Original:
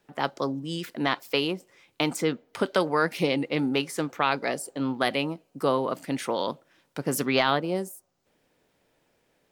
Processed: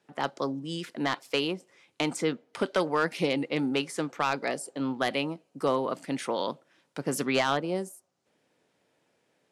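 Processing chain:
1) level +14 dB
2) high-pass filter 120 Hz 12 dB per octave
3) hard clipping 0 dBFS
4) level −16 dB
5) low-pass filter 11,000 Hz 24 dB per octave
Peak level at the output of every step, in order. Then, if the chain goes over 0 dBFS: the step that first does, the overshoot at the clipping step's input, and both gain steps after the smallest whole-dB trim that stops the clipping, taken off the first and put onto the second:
+5.5, +5.5, 0.0, −16.0, −15.0 dBFS
step 1, 5.5 dB
step 1 +8 dB, step 4 −10 dB

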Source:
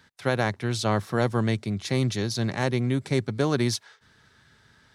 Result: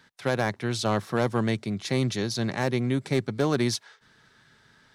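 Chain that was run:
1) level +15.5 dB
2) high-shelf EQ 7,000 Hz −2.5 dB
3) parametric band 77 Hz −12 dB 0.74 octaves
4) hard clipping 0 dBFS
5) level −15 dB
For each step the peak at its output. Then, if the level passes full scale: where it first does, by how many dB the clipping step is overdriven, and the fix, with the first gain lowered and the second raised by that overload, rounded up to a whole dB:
+6.0, +6.0, +5.5, 0.0, −15.0 dBFS
step 1, 5.5 dB
step 1 +9.5 dB, step 5 −9 dB

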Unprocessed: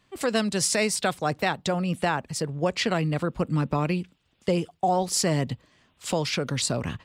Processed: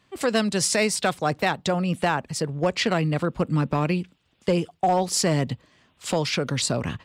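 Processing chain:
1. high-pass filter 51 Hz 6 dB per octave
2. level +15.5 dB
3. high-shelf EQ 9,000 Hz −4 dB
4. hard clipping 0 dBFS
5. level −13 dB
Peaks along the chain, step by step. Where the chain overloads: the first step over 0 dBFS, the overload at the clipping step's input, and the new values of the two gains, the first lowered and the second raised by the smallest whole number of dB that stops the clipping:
−12.5, +3.0, +3.0, 0.0, −13.0 dBFS
step 2, 3.0 dB
step 2 +12.5 dB, step 5 −10 dB

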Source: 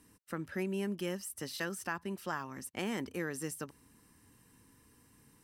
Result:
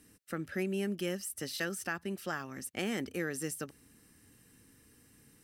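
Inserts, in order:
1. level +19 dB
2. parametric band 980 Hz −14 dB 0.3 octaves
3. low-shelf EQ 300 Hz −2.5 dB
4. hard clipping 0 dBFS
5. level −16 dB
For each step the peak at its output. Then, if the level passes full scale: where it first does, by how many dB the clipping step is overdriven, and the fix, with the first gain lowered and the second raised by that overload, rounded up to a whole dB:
−3.0, −4.5, −4.5, −4.5, −20.5 dBFS
no step passes full scale

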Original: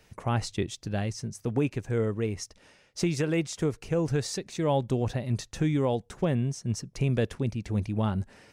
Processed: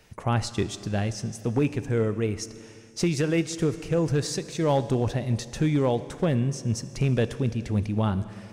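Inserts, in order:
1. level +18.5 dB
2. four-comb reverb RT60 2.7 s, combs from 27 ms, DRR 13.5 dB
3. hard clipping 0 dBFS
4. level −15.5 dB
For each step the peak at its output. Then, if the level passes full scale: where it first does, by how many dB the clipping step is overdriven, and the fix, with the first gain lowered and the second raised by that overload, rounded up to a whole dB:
+3.5, +4.0, 0.0, −15.5 dBFS
step 1, 4.0 dB
step 1 +14.5 dB, step 4 −11.5 dB

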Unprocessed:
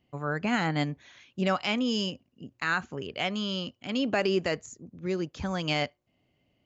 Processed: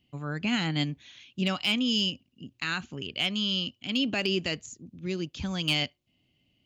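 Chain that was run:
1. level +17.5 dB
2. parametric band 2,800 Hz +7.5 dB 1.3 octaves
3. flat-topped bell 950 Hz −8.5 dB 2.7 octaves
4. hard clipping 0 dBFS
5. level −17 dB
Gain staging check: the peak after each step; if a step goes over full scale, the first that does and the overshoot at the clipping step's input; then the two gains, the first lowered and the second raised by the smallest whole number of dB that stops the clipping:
+1.0, +7.0, +5.0, 0.0, −17.0 dBFS
step 1, 5.0 dB
step 1 +12.5 dB, step 5 −12 dB

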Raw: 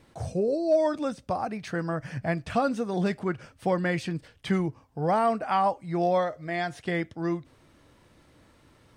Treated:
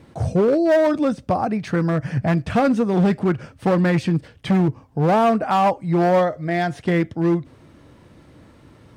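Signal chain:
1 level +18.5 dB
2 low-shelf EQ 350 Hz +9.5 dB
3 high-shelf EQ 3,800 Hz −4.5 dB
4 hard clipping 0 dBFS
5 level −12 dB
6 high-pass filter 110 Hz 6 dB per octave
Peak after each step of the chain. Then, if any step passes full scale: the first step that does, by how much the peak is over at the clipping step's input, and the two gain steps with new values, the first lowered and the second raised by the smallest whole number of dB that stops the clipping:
+4.5, +9.5, +9.5, 0.0, −12.0, −9.0 dBFS
step 1, 9.5 dB
step 1 +8.5 dB, step 5 −2 dB

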